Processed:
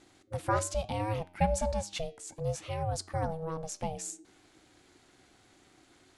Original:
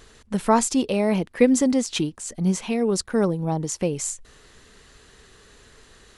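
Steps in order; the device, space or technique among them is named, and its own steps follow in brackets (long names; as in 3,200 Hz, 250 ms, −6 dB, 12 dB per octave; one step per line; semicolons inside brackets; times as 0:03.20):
alien voice (ring modulation 320 Hz; flanger 1.1 Hz, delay 9.6 ms, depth 1.8 ms, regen +88%)
level −3.5 dB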